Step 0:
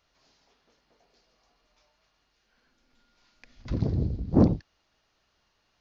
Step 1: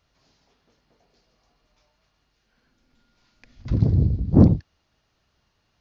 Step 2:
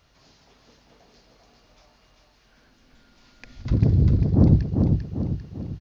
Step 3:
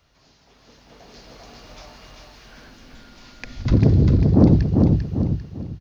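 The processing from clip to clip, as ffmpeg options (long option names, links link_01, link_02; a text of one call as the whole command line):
ffmpeg -i in.wav -af "equalizer=frequency=100:width_type=o:width=2.6:gain=9.5" out.wav
ffmpeg -i in.wav -af "areverse,acompressor=threshold=-22dB:ratio=8,areverse,aecho=1:1:396|792|1188|1584|1980|2376:0.631|0.303|0.145|0.0698|0.0335|0.0161,volume=8dB" out.wav
ffmpeg -i in.wav -filter_complex "[0:a]acrossover=split=210[link_01][link_02];[link_01]alimiter=limit=-19dB:level=0:latency=1[link_03];[link_03][link_02]amix=inputs=2:normalize=0,dynaudnorm=framelen=430:gausssize=5:maxgain=15.5dB,volume=-1dB" out.wav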